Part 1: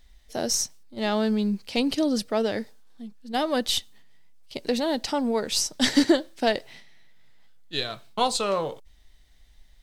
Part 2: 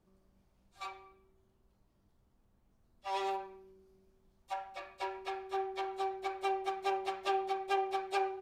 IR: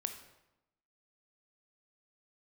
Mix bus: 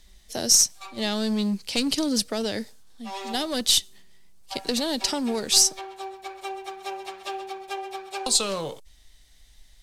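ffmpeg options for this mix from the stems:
-filter_complex "[0:a]aeval=exprs='clip(val(0),-1,0.0794)':channel_layout=same,lowpass=12000,volume=0.5dB,asplit=3[link_01][link_02][link_03];[link_01]atrim=end=5.79,asetpts=PTS-STARTPTS,afade=type=out:start_time=5.786:duration=0.004:curve=hsin[link_04];[link_02]atrim=start=5.79:end=8.26,asetpts=PTS-STARTPTS,volume=0[link_05];[link_03]atrim=start=8.26,asetpts=PTS-STARTPTS,afade=type=in:duration=0.004:curve=hsin[link_06];[link_04][link_05][link_06]concat=n=3:v=0:a=1[link_07];[1:a]volume=-0.5dB,asplit=2[link_08][link_09];[link_09]volume=-12.5dB,aecho=0:1:130:1[link_10];[link_07][link_08][link_10]amix=inputs=3:normalize=0,highshelf=frequency=3900:gain=12,acrossover=split=340|3000[link_11][link_12][link_13];[link_12]acompressor=threshold=-29dB:ratio=6[link_14];[link_11][link_14][link_13]amix=inputs=3:normalize=0"

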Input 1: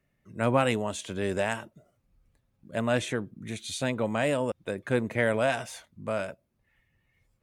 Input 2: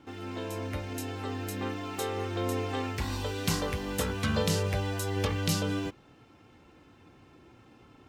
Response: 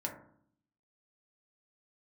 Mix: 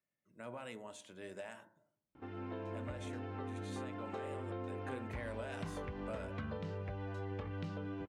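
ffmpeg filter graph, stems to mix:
-filter_complex "[0:a]highpass=frequency=290:poles=1,alimiter=limit=-18.5dB:level=0:latency=1:release=68,volume=-11dB,afade=type=in:start_time=4.57:duration=0.3:silence=0.354813,asplit=2[link_01][link_02];[link_02]volume=-5.5dB[link_03];[1:a]lowpass=1800,adelay=2150,volume=-4.5dB[link_04];[2:a]atrim=start_sample=2205[link_05];[link_03][link_05]afir=irnorm=-1:irlink=0[link_06];[link_01][link_04][link_06]amix=inputs=3:normalize=0,acompressor=threshold=-39dB:ratio=6"

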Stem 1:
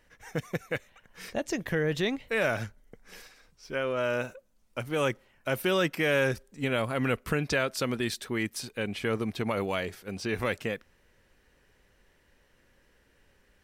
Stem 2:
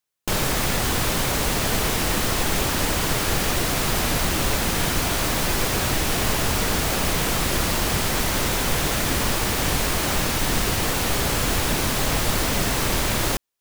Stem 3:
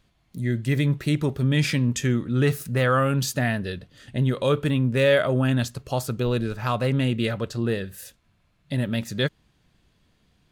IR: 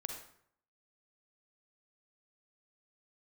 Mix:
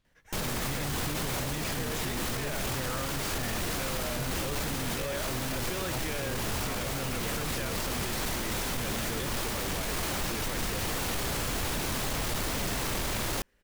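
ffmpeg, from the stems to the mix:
-filter_complex "[0:a]adelay=50,volume=-5.5dB[link_01];[1:a]asoftclip=type=tanh:threshold=-15.5dB,adelay=50,volume=-4.5dB[link_02];[2:a]volume=-10.5dB[link_03];[link_01][link_02][link_03]amix=inputs=3:normalize=0,alimiter=level_in=0.5dB:limit=-24dB:level=0:latency=1:release=13,volume=-0.5dB"

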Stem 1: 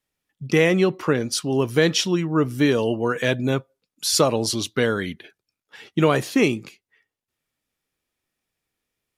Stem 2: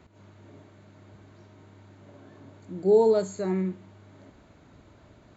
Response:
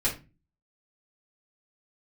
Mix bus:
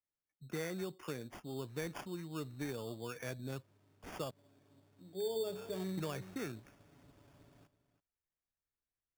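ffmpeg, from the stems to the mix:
-filter_complex "[0:a]lowpass=3800,asubboost=boost=3:cutoff=110,volume=-19.5dB,asplit=3[link_01][link_02][link_03];[link_01]atrim=end=4.31,asetpts=PTS-STARTPTS,afade=type=out:start_time=4.306:duration=0.004:curve=hsin[link_04];[link_02]atrim=start=4.31:end=5.18,asetpts=PTS-STARTPTS,volume=0[link_05];[link_03]atrim=start=5.18,asetpts=PTS-STARTPTS,afade=type=in:duration=0.004:curve=hsin[link_06];[link_04][link_05][link_06]concat=n=3:v=0:a=1,asplit=2[link_07][link_08];[1:a]aecho=1:1:7.1:0.48,adelay=2300,volume=-10dB,afade=type=in:start_time=5.22:duration=0.42:silence=0.354813,asplit=2[link_09][link_10];[link_10]volume=-14.5dB[link_11];[link_08]apad=whole_len=338393[link_12];[link_09][link_12]sidechaincompress=threshold=-42dB:ratio=8:attack=39:release=158[link_13];[link_11]aecho=0:1:329:1[link_14];[link_07][link_13][link_14]amix=inputs=3:normalize=0,acrossover=split=140[link_15][link_16];[link_16]acompressor=threshold=-42dB:ratio=1.5[link_17];[link_15][link_17]amix=inputs=2:normalize=0,acrusher=samples=11:mix=1:aa=0.000001"

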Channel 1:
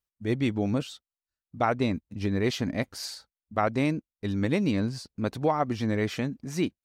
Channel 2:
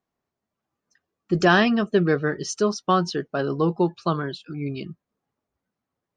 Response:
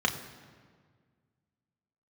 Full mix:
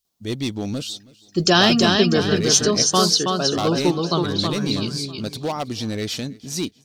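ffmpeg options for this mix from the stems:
-filter_complex "[0:a]asoftclip=type=hard:threshold=-19.5dB,volume=1dB,asplit=2[link_01][link_02];[link_02]volume=-23dB[link_03];[1:a]highshelf=frequency=11000:gain=8,adelay=50,volume=1dB,asplit=2[link_04][link_05];[link_05]volume=-4dB[link_06];[link_03][link_06]amix=inputs=2:normalize=0,aecho=0:1:323|646|969|1292|1615:1|0.35|0.122|0.0429|0.015[link_07];[link_01][link_04][link_07]amix=inputs=3:normalize=0,highshelf=frequency=2800:width_type=q:width=1.5:gain=10.5"

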